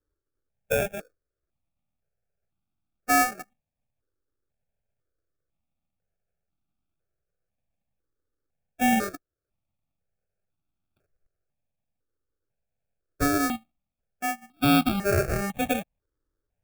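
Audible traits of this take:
aliases and images of a low sample rate 1,000 Hz, jitter 0%
notches that jump at a steady rate 2 Hz 720–1,800 Hz

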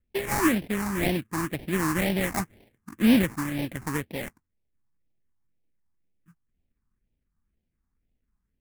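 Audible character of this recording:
aliases and images of a low sample rate 1,400 Hz, jitter 20%
phaser sweep stages 4, 2 Hz, lowest notch 530–1,200 Hz

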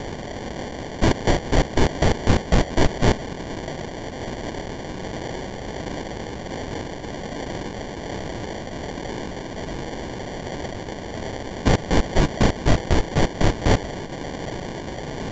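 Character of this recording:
a quantiser's noise floor 6 bits, dither triangular
phaser sweep stages 4, 1.3 Hz, lowest notch 320–2,500 Hz
aliases and images of a low sample rate 1,300 Hz, jitter 0%
A-law companding

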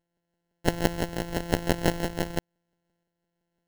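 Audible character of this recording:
a buzz of ramps at a fixed pitch in blocks of 256 samples
tremolo saw up 0.99 Hz, depth 45%
aliases and images of a low sample rate 1,200 Hz, jitter 0%

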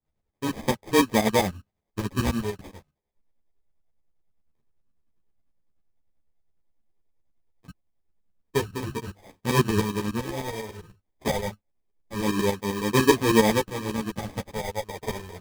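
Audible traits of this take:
tremolo saw up 10 Hz, depth 80%
phaser sweep stages 2, 0.25 Hz, lowest notch 260–1,400 Hz
aliases and images of a low sample rate 1,400 Hz, jitter 0%
a shimmering, thickened sound

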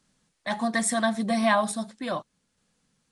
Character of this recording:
a quantiser's noise floor 12 bits, dither triangular
sample-and-hold tremolo
Ogg Vorbis

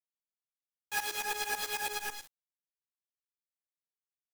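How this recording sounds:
a quantiser's noise floor 6 bits, dither none
tremolo saw up 9.1 Hz, depth 95%
a shimmering, thickened sound

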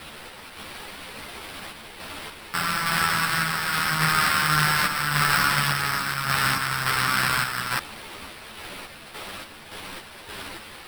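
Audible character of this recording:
a quantiser's noise floor 6 bits, dither triangular
sample-and-hold tremolo
aliases and images of a low sample rate 6,700 Hz, jitter 0%
a shimmering, thickened sound

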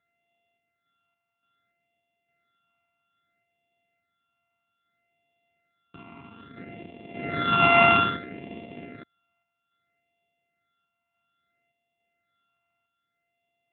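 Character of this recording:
a buzz of ramps at a fixed pitch in blocks of 64 samples
phaser sweep stages 8, 0.61 Hz, lowest notch 510–1,400 Hz
sample-and-hold tremolo
Speex

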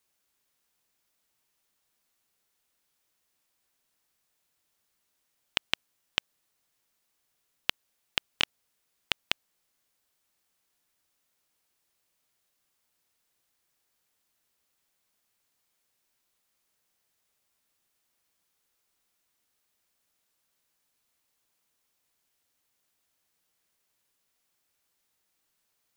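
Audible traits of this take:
background noise floor −78 dBFS
spectral slope −2.5 dB per octave

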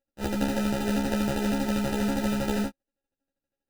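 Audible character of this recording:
a buzz of ramps at a fixed pitch in blocks of 32 samples
phaser sweep stages 2, 3.6 Hz, lowest notch 500–1,000 Hz
aliases and images of a low sample rate 1,100 Hz, jitter 0%
a shimmering, thickened sound

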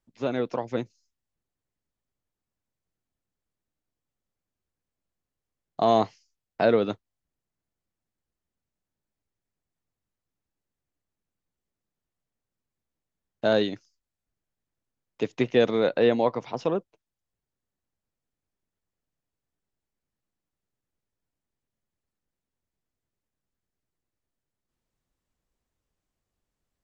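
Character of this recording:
background noise floor −88 dBFS
spectral slope −4.5 dB per octave

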